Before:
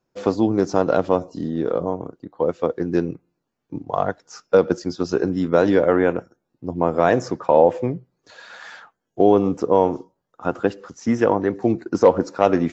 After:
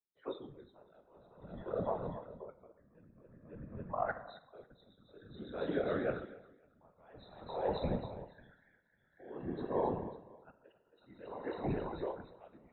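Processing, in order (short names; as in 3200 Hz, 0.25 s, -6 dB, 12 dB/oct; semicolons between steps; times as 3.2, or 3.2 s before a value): nonlinear frequency compression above 3300 Hz 4:1; HPF 67 Hz; spectral noise reduction 29 dB; low shelf 99 Hz +9 dB; reverse; compressor 6:1, threshold -31 dBFS, peak gain reduction 21 dB; reverse; multi-head echo 0.273 s, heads first and second, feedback 42%, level -10 dB; on a send at -6 dB: reverb RT60 1.2 s, pre-delay 13 ms; on the sum: whisperiser; dB-linear tremolo 0.51 Hz, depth 29 dB; gain -2 dB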